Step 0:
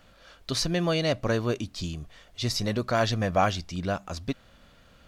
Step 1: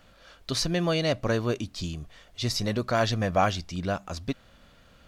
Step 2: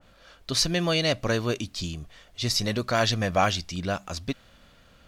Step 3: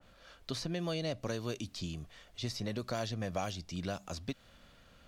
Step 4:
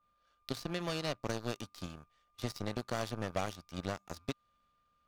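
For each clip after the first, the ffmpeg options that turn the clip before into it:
-af anull
-af "adynamicequalizer=threshold=0.0112:dfrequency=1700:dqfactor=0.7:tfrequency=1700:tqfactor=0.7:attack=5:release=100:ratio=0.375:range=3:mode=boostabove:tftype=highshelf"
-filter_complex "[0:a]acrossover=split=85|890|3300[s0][s1][s2][s3];[s0]acompressor=threshold=0.00316:ratio=4[s4];[s1]acompressor=threshold=0.0316:ratio=4[s5];[s2]acompressor=threshold=0.00562:ratio=4[s6];[s3]acompressor=threshold=0.00794:ratio=4[s7];[s4][s5][s6][s7]amix=inputs=4:normalize=0,volume=0.596"
-af "aeval=exprs='val(0)+0.00282*sin(2*PI*1200*n/s)':c=same,aeval=exprs='0.0841*(cos(1*acos(clip(val(0)/0.0841,-1,1)))-cos(1*PI/2))+0.00668*(cos(3*acos(clip(val(0)/0.0841,-1,1)))-cos(3*PI/2))+0.00668*(cos(5*acos(clip(val(0)/0.0841,-1,1)))-cos(5*PI/2))+0.0133*(cos(7*acos(clip(val(0)/0.0841,-1,1)))-cos(7*PI/2))':c=same,volume=1.26"

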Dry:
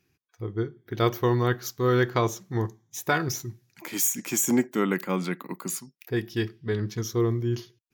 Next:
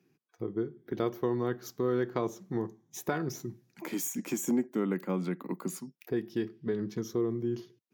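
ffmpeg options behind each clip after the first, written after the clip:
-af "highpass=f=160:w=0.5412,highpass=f=160:w=1.3066,tiltshelf=f=920:g=6.5,acompressor=threshold=0.02:ratio=2"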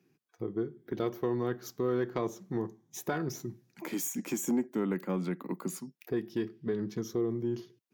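-af "asoftclip=type=tanh:threshold=0.112"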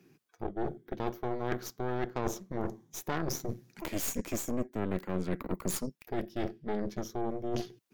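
-af "areverse,acompressor=threshold=0.00891:ratio=8,areverse,aeval=exprs='0.0299*(cos(1*acos(clip(val(0)/0.0299,-1,1)))-cos(1*PI/2))+0.0119*(cos(4*acos(clip(val(0)/0.0299,-1,1)))-cos(4*PI/2))':c=same,volume=2.51"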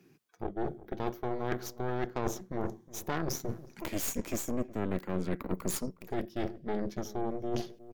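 -filter_complex "[0:a]asplit=2[s0][s1];[s1]adelay=364,lowpass=f=840:p=1,volume=0.158,asplit=2[s2][s3];[s3]adelay=364,lowpass=f=840:p=1,volume=0.24[s4];[s0][s2][s4]amix=inputs=3:normalize=0"

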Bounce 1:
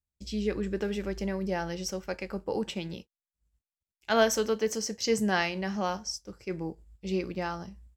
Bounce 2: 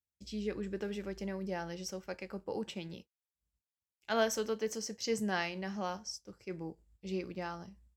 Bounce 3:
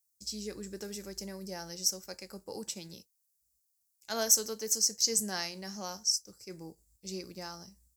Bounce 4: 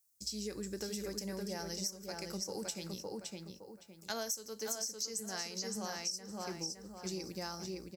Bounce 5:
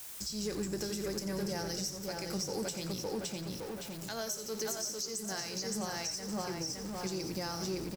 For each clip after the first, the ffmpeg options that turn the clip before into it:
-af "highpass=69,volume=0.447"
-af "aexciter=amount=9.2:drive=5.8:freq=4500,volume=0.631"
-filter_complex "[0:a]asplit=2[s0][s1];[s1]adelay=563,lowpass=f=3200:p=1,volume=0.631,asplit=2[s2][s3];[s3]adelay=563,lowpass=f=3200:p=1,volume=0.33,asplit=2[s4][s5];[s5]adelay=563,lowpass=f=3200:p=1,volume=0.33,asplit=2[s6][s7];[s7]adelay=563,lowpass=f=3200:p=1,volume=0.33[s8];[s2][s4][s6][s8]amix=inputs=4:normalize=0[s9];[s0][s9]amix=inputs=2:normalize=0,acompressor=threshold=0.0112:ratio=8,volume=1.41"
-filter_complex "[0:a]aeval=exprs='val(0)+0.5*0.00501*sgn(val(0))':c=same,alimiter=level_in=2.66:limit=0.0631:level=0:latency=1:release=265,volume=0.376,asplit=6[s0][s1][s2][s3][s4][s5];[s1]adelay=88,afreqshift=-39,volume=0.282[s6];[s2]adelay=176,afreqshift=-78,volume=0.127[s7];[s3]adelay=264,afreqshift=-117,volume=0.0569[s8];[s4]adelay=352,afreqshift=-156,volume=0.0257[s9];[s5]adelay=440,afreqshift=-195,volume=0.0116[s10];[s0][s6][s7][s8][s9][s10]amix=inputs=6:normalize=0,volume=1.88"

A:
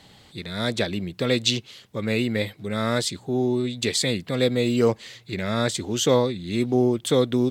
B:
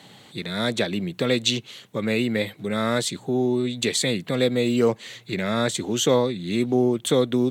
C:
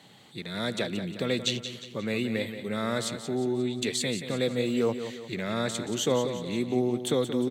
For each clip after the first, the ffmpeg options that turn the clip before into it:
-filter_complex "[0:a]highpass=f=120:w=0.5412,highpass=f=120:w=1.3066,equalizer=f=5000:t=o:w=0.22:g=-8,asplit=2[s0][s1];[s1]acompressor=threshold=0.0398:ratio=6,volume=1[s2];[s0][s2]amix=inputs=2:normalize=0,volume=0.794"
-af "aecho=1:1:178|356|534|712|890:0.316|0.149|0.0699|0.0328|0.0154,volume=0.473"

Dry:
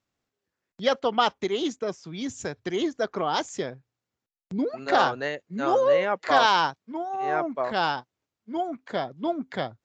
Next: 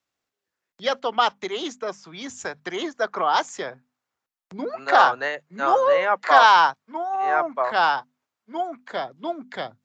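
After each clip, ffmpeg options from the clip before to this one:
-filter_complex "[0:a]lowshelf=f=360:g=-10.5,bandreject=f=50:t=h:w=6,bandreject=f=100:t=h:w=6,bandreject=f=150:t=h:w=6,bandreject=f=200:t=h:w=6,bandreject=f=250:t=h:w=6,acrossover=split=270|800|1500[s0][s1][s2][s3];[s2]dynaudnorm=f=340:g=9:m=3.35[s4];[s0][s1][s4][s3]amix=inputs=4:normalize=0,volume=1.19"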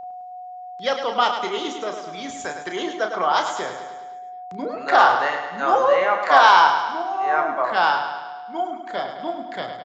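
-filter_complex "[0:a]aeval=exprs='val(0)+0.02*sin(2*PI*730*n/s)':c=same,asplit=2[s0][s1];[s1]adelay=33,volume=0.398[s2];[s0][s2]amix=inputs=2:normalize=0,aecho=1:1:105|210|315|420|525|630|735:0.398|0.231|0.134|0.0777|0.0451|0.0261|0.0152"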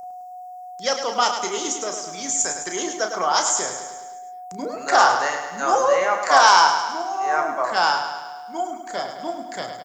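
-af "aexciter=amount=13.7:drive=2.2:freq=5400,volume=0.891"

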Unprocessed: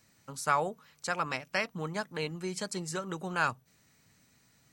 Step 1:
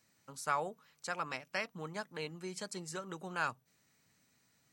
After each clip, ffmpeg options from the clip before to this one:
-af "lowshelf=f=100:g=-9.5,volume=0.501"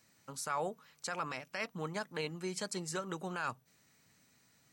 -af "alimiter=level_in=2:limit=0.0631:level=0:latency=1:release=17,volume=0.501,volume=1.58"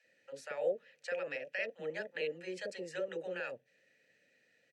-filter_complex "[0:a]asplit=3[s0][s1][s2];[s0]bandpass=f=530:t=q:w=8,volume=1[s3];[s1]bandpass=f=1840:t=q:w=8,volume=0.501[s4];[s2]bandpass=f=2480:t=q:w=8,volume=0.355[s5];[s3][s4][s5]amix=inputs=3:normalize=0,acrossover=split=650[s6][s7];[s6]adelay=40[s8];[s8][s7]amix=inputs=2:normalize=0,volume=4.47"

